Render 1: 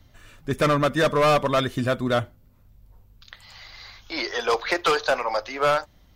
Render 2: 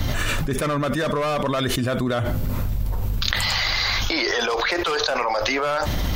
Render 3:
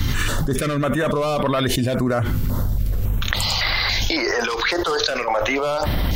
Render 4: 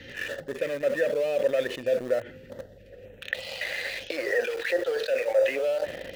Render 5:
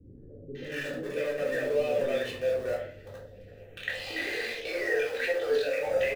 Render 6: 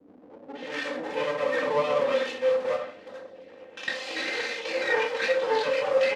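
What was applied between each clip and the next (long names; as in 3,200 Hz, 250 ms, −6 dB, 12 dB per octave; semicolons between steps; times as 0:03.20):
envelope flattener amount 100%; level −5.5 dB
notch on a step sequencer 3.6 Hz 640–6,600 Hz; level +3 dB
formant filter e; in parallel at −5 dB: centre clipping without the shift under −34 dBFS
multiband delay without the direct sound lows, highs 550 ms, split 380 Hz; rectangular room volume 440 cubic metres, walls furnished, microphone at 3.6 metres; level −6.5 dB
lower of the sound and its delayed copy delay 3.8 ms; band-pass filter 280–5,600 Hz; level +5 dB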